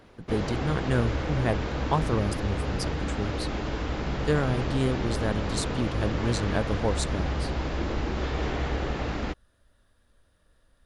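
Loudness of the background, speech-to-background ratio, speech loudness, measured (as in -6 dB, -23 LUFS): -31.0 LUFS, 0.5 dB, -30.5 LUFS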